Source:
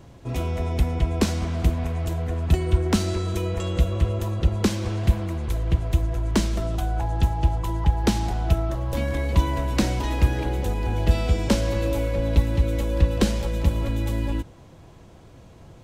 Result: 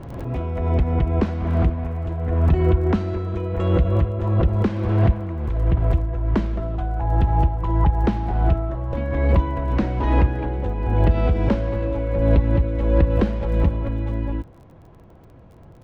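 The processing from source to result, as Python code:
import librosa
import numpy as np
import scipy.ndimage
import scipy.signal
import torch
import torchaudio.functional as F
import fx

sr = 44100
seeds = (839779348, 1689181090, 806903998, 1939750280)

y = scipy.signal.sosfilt(scipy.signal.butter(2, 1700.0, 'lowpass', fs=sr, output='sos'), x)
y = fx.dmg_crackle(y, sr, seeds[0], per_s=23.0, level_db=-44.0)
y = fx.pre_swell(y, sr, db_per_s=38.0)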